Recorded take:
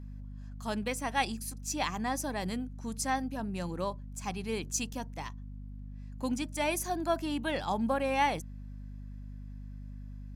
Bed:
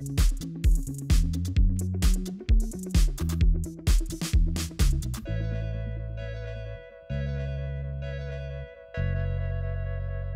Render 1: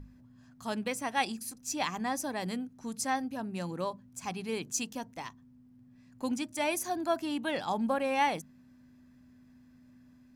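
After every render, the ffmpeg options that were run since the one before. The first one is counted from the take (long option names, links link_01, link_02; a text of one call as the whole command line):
ffmpeg -i in.wav -af "bandreject=frequency=50:width_type=h:width=6,bandreject=frequency=100:width_type=h:width=6,bandreject=frequency=150:width_type=h:width=6,bandreject=frequency=200:width_type=h:width=6" out.wav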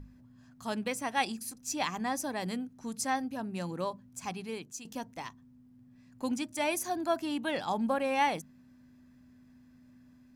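ffmpeg -i in.wav -filter_complex "[0:a]asplit=2[link_01][link_02];[link_01]atrim=end=4.85,asetpts=PTS-STARTPTS,afade=type=out:start_time=4.24:duration=0.61:silence=0.199526[link_03];[link_02]atrim=start=4.85,asetpts=PTS-STARTPTS,afade=type=in:duration=0.004:curve=hsin:silence=0.199526[link_04];[link_03][link_04]concat=n=2:v=0:a=1" out.wav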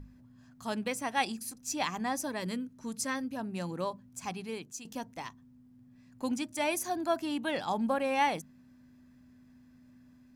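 ffmpeg -i in.wav -filter_complex "[0:a]asettb=1/sr,asplit=3[link_01][link_02][link_03];[link_01]atrim=end=2.274[link_04];[link_02]atrim=start=2.27:end=3.33,asetpts=PTS-STARTPTS,afade=type=in:duration=0.004:curve=qsin,afade=type=out:start_time=1.056:duration=0.004:curve=qsin,asuperstop=centerf=760:order=4:qfactor=5.4[link_05];[link_03]atrim=start=3.326[link_06];[link_04][link_05]acrossfade=duration=0.004:curve1=hsin:curve2=qsin[link_07];[link_07][link_06]acrossfade=duration=0.004:curve1=qsin:curve2=hsin" out.wav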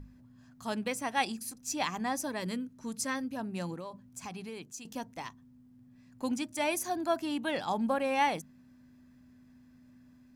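ffmpeg -i in.wav -filter_complex "[0:a]asettb=1/sr,asplit=3[link_01][link_02][link_03];[link_01]atrim=end=3.744[link_04];[link_02]atrim=start=3.74:end=4.82,asetpts=PTS-STARTPTS,afade=type=in:duration=0.004:curve=qsin,afade=type=out:start_time=1.076:duration=0.004:curve=qsin,acompressor=threshold=-37dB:ratio=6:attack=3.2:release=140:knee=1:detection=peak[link_05];[link_03]atrim=start=4.816[link_06];[link_04][link_05]acrossfade=duration=0.004:curve1=hsin:curve2=qsin[link_07];[link_07][link_06]acrossfade=duration=0.004:curve1=qsin:curve2=hsin" out.wav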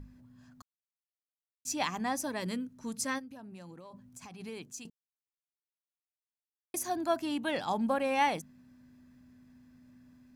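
ffmpeg -i in.wav -filter_complex "[0:a]asplit=3[link_01][link_02][link_03];[link_01]afade=type=out:start_time=3.18:duration=0.02[link_04];[link_02]acompressor=threshold=-45dB:ratio=6:attack=3.2:release=140:knee=1:detection=peak,afade=type=in:start_time=3.18:duration=0.02,afade=type=out:start_time=4.39:duration=0.02[link_05];[link_03]afade=type=in:start_time=4.39:duration=0.02[link_06];[link_04][link_05][link_06]amix=inputs=3:normalize=0,asplit=5[link_07][link_08][link_09][link_10][link_11];[link_07]atrim=end=0.62,asetpts=PTS-STARTPTS,afade=type=out:start_time=0.616:duration=0.004:curve=hsin[link_12];[link_08]atrim=start=0.62:end=1.65,asetpts=PTS-STARTPTS,volume=0[link_13];[link_09]atrim=start=1.65:end=4.9,asetpts=PTS-STARTPTS,afade=type=in:duration=0.004:curve=hsin,afade=type=out:start_time=3.246:duration=0.004:curve=hsin[link_14];[link_10]atrim=start=4.9:end=6.74,asetpts=PTS-STARTPTS,volume=0[link_15];[link_11]atrim=start=6.74,asetpts=PTS-STARTPTS,afade=type=in:duration=0.004:curve=hsin[link_16];[link_12][link_13][link_14][link_15][link_16]concat=n=5:v=0:a=1" out.wav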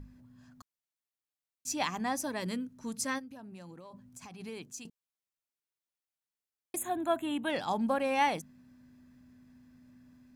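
ffmpeg -i in.wav -filter_complex "[0:a]asettb=1/sr,asplit=3[link_01][link_02][link_03];[link_01]atrim=end=6.764[link_04];[link_02]atrim=start=6.76:end=7.5,asetpts=PTS-STARTPTS,afade=type=in:duration=0.004:curve=qsin,afade=type=out:start_time=0.736:duration=0.004:curve=qsin,asuperstop=centerf=5200:order=12:qfactor=1.9[link_05];[link_03]atrim=start=7.496[link_06];[link_04][link_05]acrossfade=duration=0.004:curve1=hsin:curve2=qsin[link_07];[link_07][link_06]acrossfade=duration=0.004:curve1=qsin:curve2=hsin" out.wav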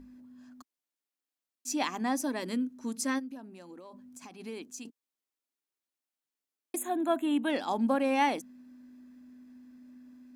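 ffmpeg -i in.wav -af "lowshelf=frequency=190:width_type=q:width=3:gain=-10" out.wav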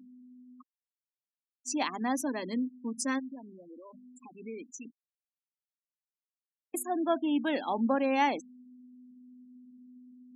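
ffmpeg -i in.wav -af "highpass=140,afftfilt=real='re*gte(hypot(re,im),0.0126)':imag='im*gte(hypot(re,im),0.0126)':win_size=1024:overlap=0.75" out.wav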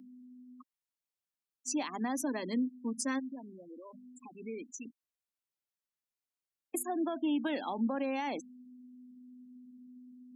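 ffmpeg -i in.wav -filter_complex "[0:a]alimiter=level_in=0.5dB:limit=-24dB:level=0:latency=1:release=108,volume=-0.5dB,acrossover=split=330|3000[link_01][link_02][link_03];[link_02]acompressor=threshold=-33dB:ratio=6[link_04];[link_01][link_04][link_03]amix=inputs=3:normalize=0" out.wav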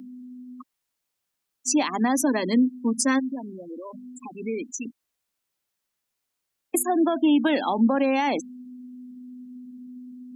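ffmpeg -i in.wav -af "volume=12dB" out.wav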